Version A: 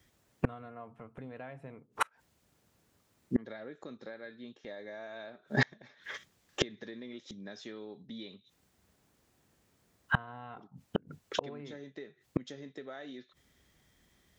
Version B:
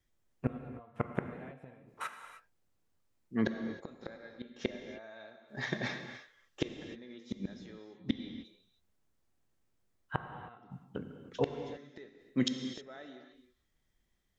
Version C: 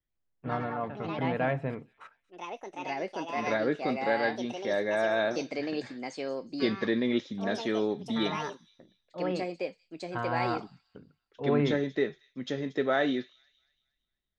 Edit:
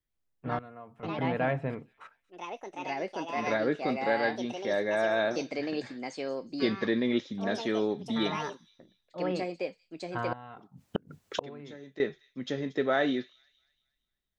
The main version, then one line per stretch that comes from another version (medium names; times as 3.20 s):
C
0.59–1.03 s: from A
10.33–12.00 s: from A
not used: B